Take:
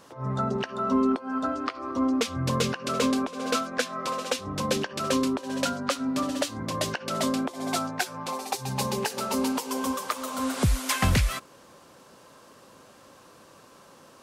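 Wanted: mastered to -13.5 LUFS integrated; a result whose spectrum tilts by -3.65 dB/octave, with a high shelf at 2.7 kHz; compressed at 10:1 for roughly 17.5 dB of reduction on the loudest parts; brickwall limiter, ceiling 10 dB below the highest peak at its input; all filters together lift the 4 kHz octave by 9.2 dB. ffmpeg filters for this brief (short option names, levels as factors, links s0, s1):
-af "highshelf=f=2700:g=3.5,equalizer=f=4000:t=o:g=8.5,acompressor=threshold=0.0158:ratio=10,volume=23.7,alimiter=limit=0.794:level=0:latency=1"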